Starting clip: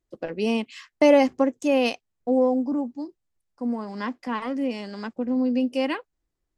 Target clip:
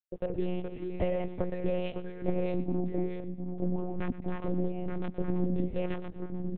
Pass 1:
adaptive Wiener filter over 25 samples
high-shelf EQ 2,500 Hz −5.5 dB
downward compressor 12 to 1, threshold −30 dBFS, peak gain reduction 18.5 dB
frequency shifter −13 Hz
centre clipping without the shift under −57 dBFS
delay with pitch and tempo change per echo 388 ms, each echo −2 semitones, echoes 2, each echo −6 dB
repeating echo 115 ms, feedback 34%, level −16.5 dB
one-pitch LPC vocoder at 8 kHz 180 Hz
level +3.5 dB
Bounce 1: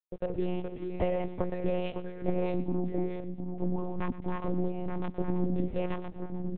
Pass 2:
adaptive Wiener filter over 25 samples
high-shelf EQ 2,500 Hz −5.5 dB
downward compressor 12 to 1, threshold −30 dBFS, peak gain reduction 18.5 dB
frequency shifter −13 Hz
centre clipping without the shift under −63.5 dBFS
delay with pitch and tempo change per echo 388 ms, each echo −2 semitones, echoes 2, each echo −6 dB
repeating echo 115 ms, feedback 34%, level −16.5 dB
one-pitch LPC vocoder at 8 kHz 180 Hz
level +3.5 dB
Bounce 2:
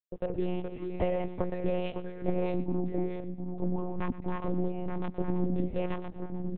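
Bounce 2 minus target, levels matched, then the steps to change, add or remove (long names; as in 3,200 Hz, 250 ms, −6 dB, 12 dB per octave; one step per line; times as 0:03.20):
1,000 Hz band +3.5 dB
add after downward compressor: parametric band 1,000 Hz −12.5 dB 0.25 octaves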